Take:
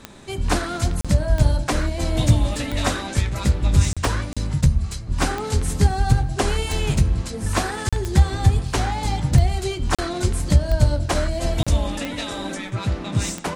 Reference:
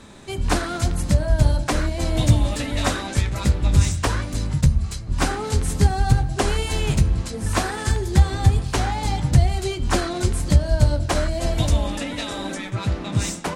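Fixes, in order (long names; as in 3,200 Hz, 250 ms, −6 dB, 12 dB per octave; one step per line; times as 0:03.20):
click removal
repair the gap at 0:01.01/0:03.93/0:04.33/0:07.89/0:09.95/0:11.63, 36 ms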